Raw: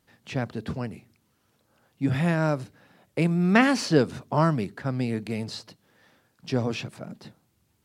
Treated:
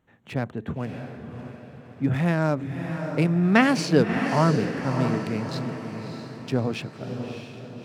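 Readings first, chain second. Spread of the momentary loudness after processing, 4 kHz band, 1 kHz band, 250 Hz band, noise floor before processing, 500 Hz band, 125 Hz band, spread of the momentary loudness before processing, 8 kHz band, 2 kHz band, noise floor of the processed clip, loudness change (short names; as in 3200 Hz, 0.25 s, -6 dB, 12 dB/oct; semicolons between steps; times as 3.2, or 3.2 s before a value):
18 LU, +0.5 dB, +2.0 dB, +2.0 dB, -70 dBFS, +2.0 dB, +2.0 dB, 17 LU, 0.0 dB, +1.5 dB, -47 dBFS, +1.0 dB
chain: Wiener smoothing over 9 samples; diffused feedback echo 0.626 s, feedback 48%, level -7 dB; gain +1 dB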